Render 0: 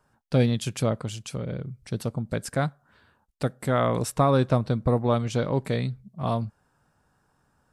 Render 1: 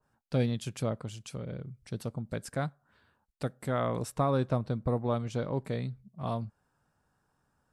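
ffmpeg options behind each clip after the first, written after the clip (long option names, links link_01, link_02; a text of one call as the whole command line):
ffmpeg -i in.wav -af "adynamicequalizer=threshold=0.00891:dfrequency=1600:dqfactor=0.7:tfrequency=1600:tqfactor=0.7:attack=5:release=100:ratio=0.375:range=2:mode=cutabove:tftype=highshelf,volume=-7dB" out.wav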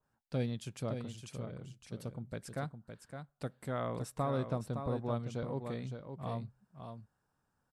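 ffmpeg -i in.wav -af "aecho=1:1:563:0.422,volume=-6.5dB" out.wav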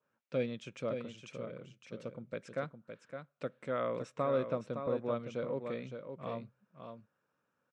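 ffmpeg -i in.wav -af "highpass=190,equalizer=frequency=530:width_type=q:width=4:gain=8,equalizer=frequency=790:width_type=q:width=4:gain=-8,equalizer=frequency=1300:width_type=q:width=4:gain=4,equalizer=frequency=2400:width_type=q:width=4:gain=7,equalizer=frequency=4600:width_type=q:width=4:gain=-9,lowpass=frequency=6100:width=0.5412,lowpass=frequency=6100:width=1.3066" out.wav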